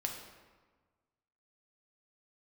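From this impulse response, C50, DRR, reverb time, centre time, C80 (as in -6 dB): 5.0 dB, 1.5 dB, 1.4 s, 40 ms, 7.0 dB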